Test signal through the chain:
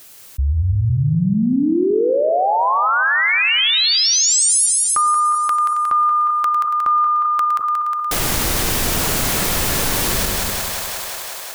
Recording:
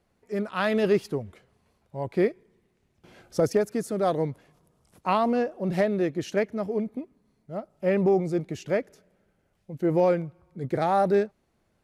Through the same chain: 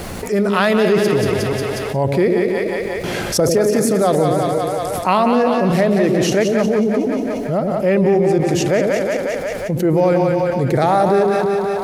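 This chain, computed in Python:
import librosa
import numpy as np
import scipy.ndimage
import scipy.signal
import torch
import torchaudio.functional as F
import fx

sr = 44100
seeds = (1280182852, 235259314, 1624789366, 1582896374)

p1 = fx.reverse_delay(x, sr, ms=191, wet_db=-11.0)
p2 = fx.high_shelf(p1, sr, hz=5600.0, db=6.5)
p3 = p2 + fx.echo_split(p2, sr, split_hz=540.0, low_ms=100, high_ms=180, feedback_pct=52, wet_db=-6.5, dry=0)
p4 = fx.env_flatten(p3, sr, amount_pct=70)
y = p4 * 10.0 ** (4.0 / 20.0)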